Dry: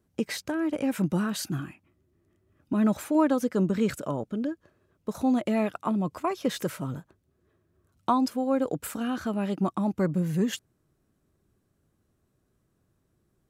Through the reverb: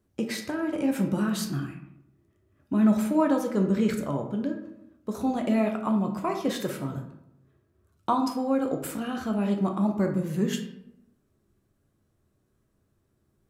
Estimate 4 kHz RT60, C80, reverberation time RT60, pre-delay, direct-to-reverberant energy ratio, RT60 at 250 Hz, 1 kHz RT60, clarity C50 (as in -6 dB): 0.45 s, 11.0 dB, 0.80 s, 8 ms, 3.0 dB, 0.95 s, 0.75 s, 7.5 dB